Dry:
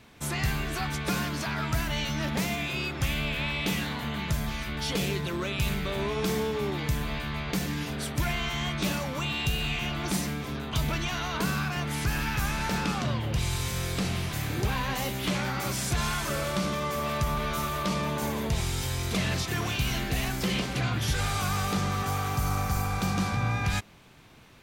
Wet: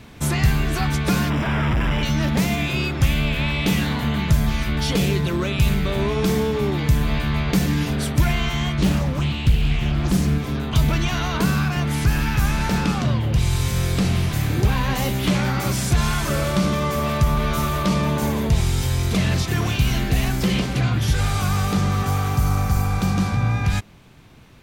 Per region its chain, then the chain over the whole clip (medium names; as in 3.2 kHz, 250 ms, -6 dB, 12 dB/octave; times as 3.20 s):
1.30–2.03 s: one-bit comparator + Savitzky-Golay filter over 25 samples + band-stop 700 Hz, Q 16
8.78–10.38 s: bass shelf 170 Hz +10 dB + loudspeaker Doppler distortion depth 0.82 ms
whole clip: bass shelf 300 Hz +7.5 dB; gain riding; trim +4 dB